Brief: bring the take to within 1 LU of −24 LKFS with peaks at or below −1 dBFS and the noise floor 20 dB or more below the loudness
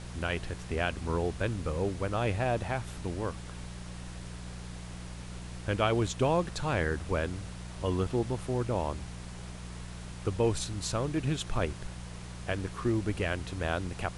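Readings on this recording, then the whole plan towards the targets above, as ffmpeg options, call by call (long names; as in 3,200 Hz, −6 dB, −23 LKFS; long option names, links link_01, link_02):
mains hum 60 Hz; hum harmonics up to 180 Hz; level of the hum −40 dBFS; background noise floor −43 dBFS; target noise floor −53 dBFS; integrated loudness −32.5 LKFS; sample peak −13.0 dBFS; target loudness −24.0 LKFS
→ -af "bandreject=frequency=60:width_type=h:width=4,bandreject=frequency=120:width_type=h:width=4,bandreject=frequency=180:width_type=h:width=4"
-af "afftdn=noise_reduction=10:noise_floor=-43"
-af "volume=8.5dB"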